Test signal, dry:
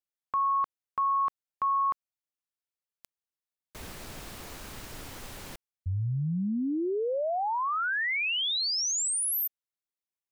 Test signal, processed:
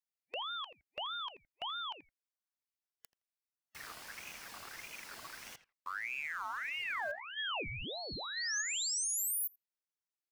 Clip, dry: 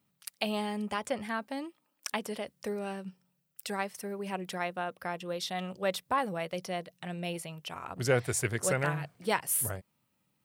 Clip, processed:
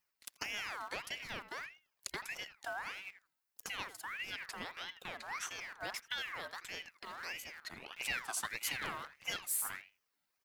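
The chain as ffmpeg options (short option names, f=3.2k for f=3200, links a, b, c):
-filter_complex "[0:a]superequalizer=7b=1.41:8b=0.282:10b=0.501:11b=0.708:13b=1.78,acrossover=split=260|2500[a][b][c];[a]acrusher=bits=5:dc=4:mix=0:aa=0.000001[d];[d][b][c]amix=inputs=3:normalize=0,acrossover=split=1300|4300[e][f][g];[e]acompressor=threshold=-33dB:ratio=2.5[h];[f]acompressor=threshold=-42dB:ratio=3[i];[h][i][g]amix=inputs=3:normalize=0,asplit=2[j][k];[k]adelay=83,lowpass=f=1.8k:p=1,volume=-12.5dB,asplit=2[l][m];[m]adelay=83,lowpass=f=1.8k:p=1,volume=0.15[n];[j][l][n]amix=inputs=3:normalize=0,aeval=exprs='val(0)*sin(2*PI*1800*n/s+1800*0.4/1.6*sin(2*PI*1.6*n/s))':c=same,volume=-3dB"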